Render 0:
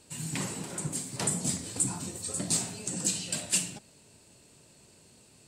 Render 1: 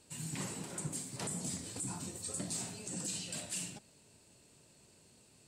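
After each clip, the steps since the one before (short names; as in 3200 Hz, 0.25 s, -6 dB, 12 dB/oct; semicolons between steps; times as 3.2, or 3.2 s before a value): limiter -23 dBFS, peak gain reduction 10 dB; gain -5.5 dB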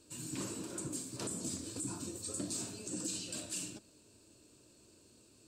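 thirty-one-band EQ 160 Hz -11 dB, 315 Hz +9 dB, 800 Hz -10 dB, 2000 Hz -11 dB, 3150 Hz -3 dB, 10000 Hz -6 dB; gain +1 dB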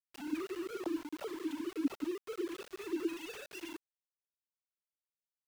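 sine-wave speech; sample gate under -46 dBFS; gain +2.5 dB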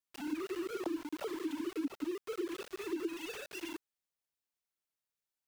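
compressor 6:1, threshold -35 dBFS, peak gain reduction 9 dB; gain +2.5 dB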